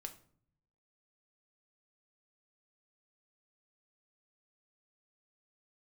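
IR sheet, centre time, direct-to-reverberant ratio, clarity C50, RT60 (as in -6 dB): 8 ms, 5.5 dB, 14.0 dB, 0.55 s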